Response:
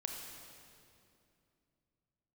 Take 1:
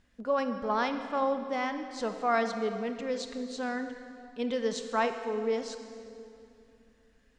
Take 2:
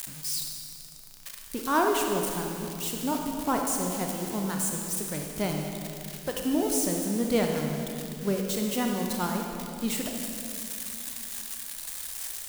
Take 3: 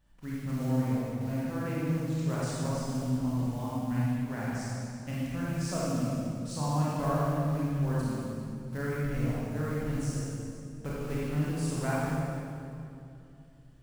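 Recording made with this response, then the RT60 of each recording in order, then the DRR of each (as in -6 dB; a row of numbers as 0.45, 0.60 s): 2; 2.6, 2.6, 2.6 s; 7.5, 1.5, -8.0 dB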